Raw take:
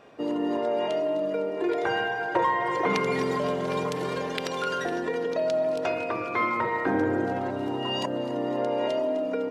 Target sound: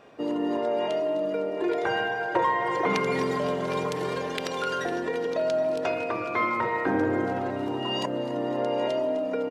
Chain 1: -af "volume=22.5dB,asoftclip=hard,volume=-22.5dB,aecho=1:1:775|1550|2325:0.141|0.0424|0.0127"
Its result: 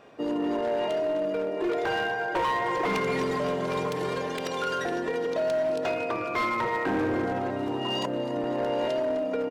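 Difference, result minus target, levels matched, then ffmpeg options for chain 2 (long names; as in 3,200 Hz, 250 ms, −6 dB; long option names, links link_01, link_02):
gain into a clipping stage and back: distortion +28 dB
-af "volume=12dB,asoftclip=hard,volume=-12dB,aecho=1:1:775|1550|2325:0.141|0.0424|0.0127"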